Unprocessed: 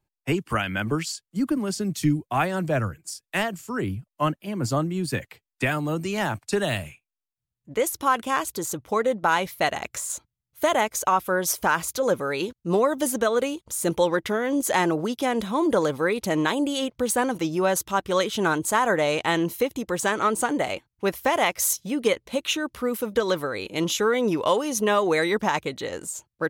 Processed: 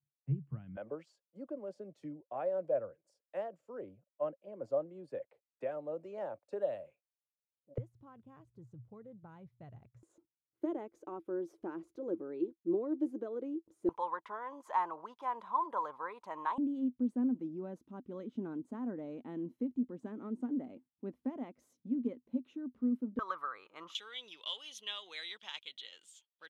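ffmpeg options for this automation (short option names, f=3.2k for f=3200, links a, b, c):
-af "asetnsamples=n=441:p=0,asendcmd='0.77 bandpass f 550;7.78 bandpass f 120;10.03 bandpass f 330;13.89 bandpass f 1000;16.58 bandpass f 250;23.19 bandpass f 1200;23.95 bandpass f 3300',bandpass=f=140:t=q:w=9.2:csg=0"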